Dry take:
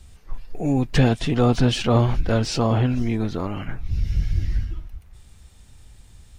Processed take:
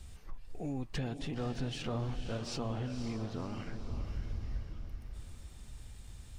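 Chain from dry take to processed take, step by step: compression 2.5:1, threshold -39 dBFS, peak gain reduction 17.5 dB; echo that smears into a reverb 522 ms, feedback 47%, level -8 dB; trim -3 dB

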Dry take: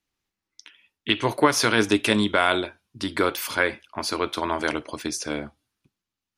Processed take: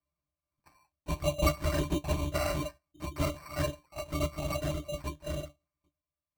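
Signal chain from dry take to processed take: rattle on loud lows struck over -28 dBFS, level -15 dBFS; high-pass 320 Hz 24 dB/octave; in parallel at +1.5 dB: compression, threshold -33 dBFS, peak gain reduction 18.5 dB; on the sum: LPC vocoder at 8 kHz whisper; pitch-class resonator D, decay 0.11 s; small resonant body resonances 620/1600/2800 Hz, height 6 dB; sample-and-hold 13×

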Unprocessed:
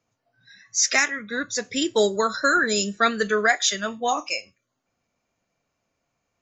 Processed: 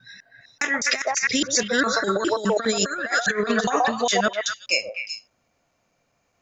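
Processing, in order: slices played last to first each 204 ms, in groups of 3; repeats whose band climbs or falls 126 ms, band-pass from 680 Hz, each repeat 1.4 oct, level -1.5 dB; compressor with a negative ratio -24 dBFS, ratio -0.5; trim +3 dB

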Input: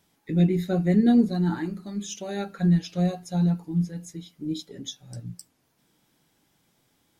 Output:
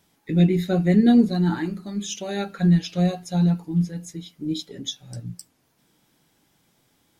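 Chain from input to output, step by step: dynamic bell 3 kHz, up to +4 dB, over -51 dBFS, Q 1; trim +3 dB

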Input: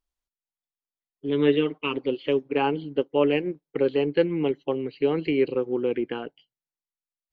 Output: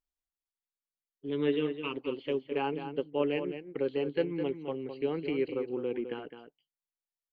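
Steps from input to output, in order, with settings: echo from a far wall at 36 m, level -9 dB; trim -8.5 dB

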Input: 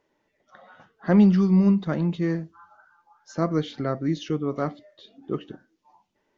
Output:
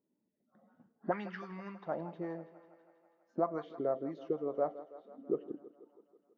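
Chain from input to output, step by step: auto-wah 220–1700 Hz, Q 3.4, up, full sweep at -15.5 dBFS; thinning echo 163 ms, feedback 71%, high-pass 220 Hz, level -16 dB

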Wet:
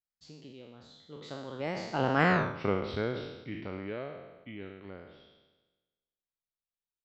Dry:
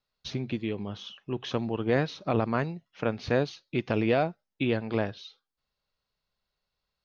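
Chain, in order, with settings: spectral sustain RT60 1.12 s; Doppler pass-by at 2.37 s, 52 m/s, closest 5.2 m; trim +7 dB

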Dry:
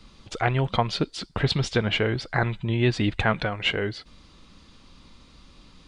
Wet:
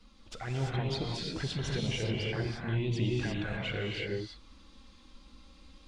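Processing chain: peak limiter -19 dBFS, peak gain reduction 11 dB; touch-sensitive flanger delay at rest 4.6 ms, full sweep at -24 dBFS; gated-style reverb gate 370 ms rising, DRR -2 dB; trim -6.5 dB

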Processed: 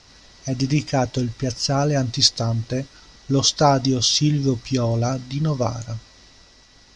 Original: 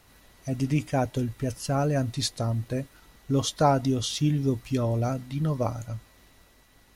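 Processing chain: low-pass 6.7 kHz 24 dB/octave; peaking EQ 5.2 kHz +13.5 dB 0.72 oct; trim +5 dB

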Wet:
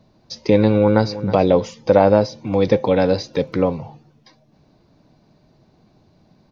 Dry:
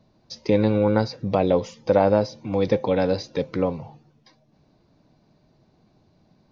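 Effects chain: 0.72–1.29 s: echo throw 320 ms, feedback 15%, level -15 dB; 2.44–3.73 s: crackle 20 per s -52 dBFS; trim +5 dB

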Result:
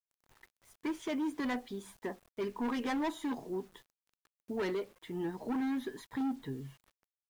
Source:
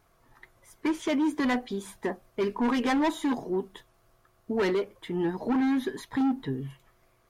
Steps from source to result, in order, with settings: bit crusher 9-bit; trim -8.5 dB

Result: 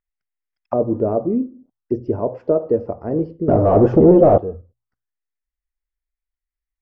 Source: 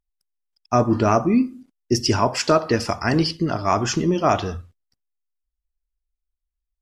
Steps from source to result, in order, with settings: hum notches 60/120 Hz; 3.48–4.38 s: waveshaping leveller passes 5; touch-sensitive low-pass 510–2000 Hz down, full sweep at -24.5 dBFS; trim -5 dB

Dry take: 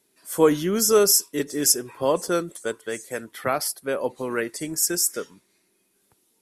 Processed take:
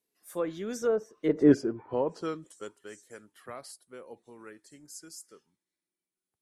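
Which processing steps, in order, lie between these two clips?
Doppler pass-by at 1.48 s, 26 m/s, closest 2.2 m; low-pass that closes with the level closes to 980 Hz, closed at -31 dBFS; trim +8.5 dB

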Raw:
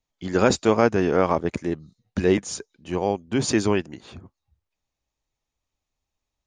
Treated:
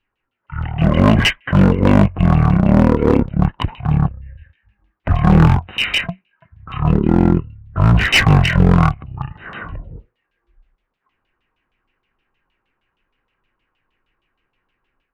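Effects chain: level rider gain up to 6 dB; speed mistake 78 rpm record played at 33 rpm; LFO low-pass saw down 6.4 Hz 960–3500 Hz; one-sided clip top -19 dBFS, bottom -8 dBFS; trim +6.5 dB

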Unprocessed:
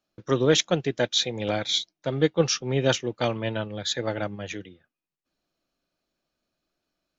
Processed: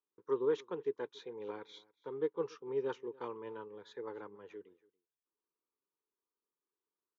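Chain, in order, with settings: two resonant band-passes 650 Hz, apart 1.2 oct; delay 282 ms -24 dB; trim -4.5 dB

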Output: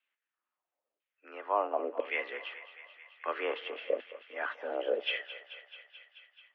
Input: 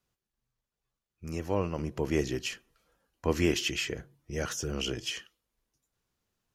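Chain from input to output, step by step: LFO band-pass saw down 1 Hz 370–2600 Hz; mistuned SSB +110 Hz 160–3400 Hz; thinning echo 217 ms, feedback 77%, high-pass 710 Hz, level -12.5 dB; trim +8.5 dB

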